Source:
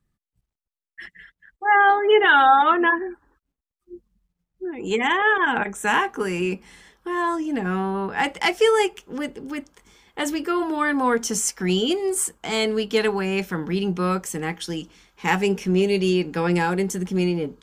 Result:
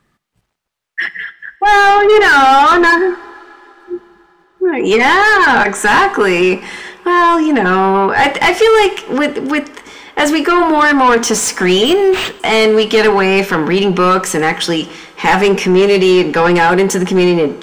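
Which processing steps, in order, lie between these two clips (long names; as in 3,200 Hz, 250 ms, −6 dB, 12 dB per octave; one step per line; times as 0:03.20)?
mid-hump overdrive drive 23 dB, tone 2,200 Hz, clips at −4.5 dBFS
coupled-rooms reverb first 0.59 s, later 3.8 s, from −18 dB, DRR 15 dB
in parallel at +0.5 dB: brickwall limiter −16 dBFS, peak gain reduction 11 dB
0:11.85–0:12.40: on the sum: linearly interpolated sample-rate reduction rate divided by 4×
level +1 dB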